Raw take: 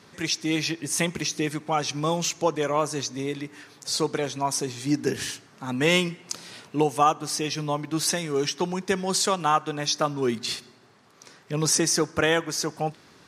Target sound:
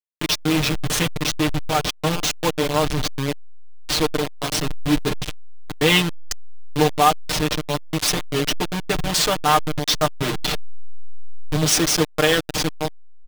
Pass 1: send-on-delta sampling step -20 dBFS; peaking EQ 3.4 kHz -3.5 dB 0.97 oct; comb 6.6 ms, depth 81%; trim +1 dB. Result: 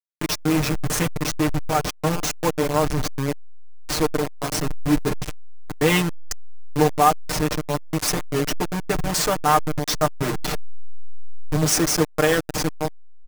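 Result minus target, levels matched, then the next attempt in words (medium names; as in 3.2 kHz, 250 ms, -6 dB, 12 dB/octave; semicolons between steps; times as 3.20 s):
4 kHz band -5.0 dB
send-on-delta sampling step -20 dBFS; peaking EQ 3.4 kHz +6 dB 0.97 oct; comb 6.6 ms, depth 81%; trim +1 dB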